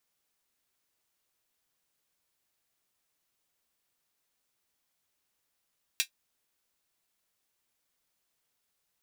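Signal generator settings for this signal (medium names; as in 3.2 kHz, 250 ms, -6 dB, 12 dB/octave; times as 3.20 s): closed hi-hat, high-pass 2.6 kHz, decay 0.10 s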